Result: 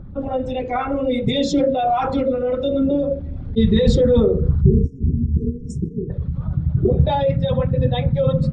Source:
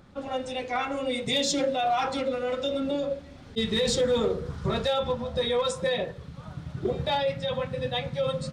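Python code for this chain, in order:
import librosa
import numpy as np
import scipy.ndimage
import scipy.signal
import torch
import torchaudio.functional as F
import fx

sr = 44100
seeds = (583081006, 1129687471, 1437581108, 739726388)

y = fx.envelope_sharpen(x, sr, power=1.5)
y = fx.riaa(y, sr, side='playback')
y = fx.spec_erase(y, sr, start_s=4.61, length_s=1.49, low_hz=470.0, high_hz=5300.0)
y = y * 10.0 ** (5.5 / 20.0)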